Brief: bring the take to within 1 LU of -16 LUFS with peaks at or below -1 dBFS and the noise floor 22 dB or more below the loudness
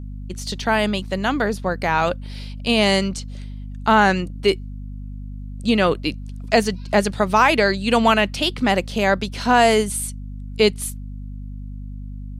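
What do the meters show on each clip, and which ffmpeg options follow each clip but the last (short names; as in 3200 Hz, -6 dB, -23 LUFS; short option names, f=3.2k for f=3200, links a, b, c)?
hum 50 Hz; harmonics up to 250 Hz; hum level -30 dBFS; loudness -19.5 LUFS; peak -2.5 dBFS; loudness target -16.0 LUFS
-> -af "bandreject=f=50:t=h:w=4,bandreject=f=100:t=h:w=4,bandreject=f=150:t=h:w=4,bandreject=f=200:t=h:w=4,bandreject=f=250:t=h:w=4"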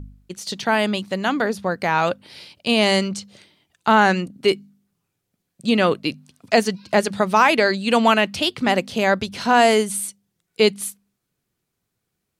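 hum none; loudness -19.5 LUFS; peak -2.5 dBFS; loudness target -16.0 LUFS
-> -af "volume=3.5dB,alimiter=limit=-1dB:level=0:latency=1"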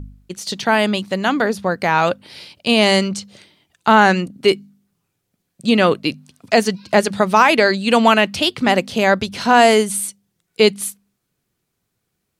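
loudness -16.0 LUFS; peak -1.0 dBFS; noise floor -75 dBFS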